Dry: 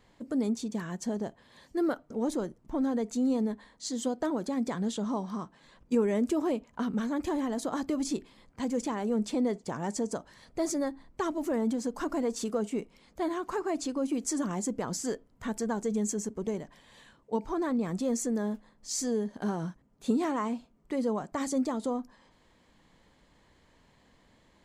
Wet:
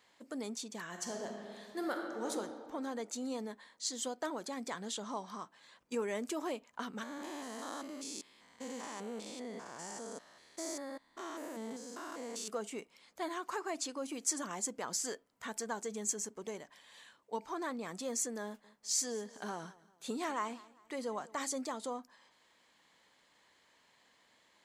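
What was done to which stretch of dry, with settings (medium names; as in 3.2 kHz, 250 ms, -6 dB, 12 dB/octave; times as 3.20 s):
0.87–2.31 s: reverb throw, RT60 2 s, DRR 1 dB
7.03–12.48 s: spectrogram pixelated in time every 200 ms
18.44–21.47 s: feedback delay 198 ms, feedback 38%, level -21 dB
whole clip: high-pass 1.3 kHz 6 dB/octave; trim +1 dB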